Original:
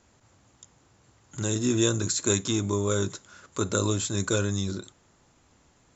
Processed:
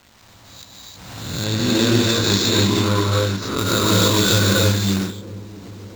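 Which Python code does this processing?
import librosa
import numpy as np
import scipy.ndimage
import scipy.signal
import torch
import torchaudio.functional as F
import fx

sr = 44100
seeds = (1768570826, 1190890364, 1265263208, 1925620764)

y = fx.spec_swells(x, sr, rise_s=0.55)
y = fx.rev_gated(y, sr, seeds[0], gate_ms=340, shape='rising', drr_db=-4.5)
y = np.repeat(y[::4], 4)[:len(y)]
y = fx.quant_companded(y, sr, bits=4)
y = fx.high_shelf(y, sr, hz=6300.0, db=-9.5, at=(1.44, 3.58))
y = fx.rider(y, sr, range_db=10, speed_s=2.0)
y = fx.peak_eq(y, sr, hz=400.0, db=-5.0, octaves=0.63)
y = fx.echo_wet_lowpass(y, sr, ms=674, feedback_pct=71, hz=520.0, wet_db=-19)
y = fx.pre_swell(y, sr, db_per_s=41.0)
y = y * 10.0 ** (3.0 / 20.0)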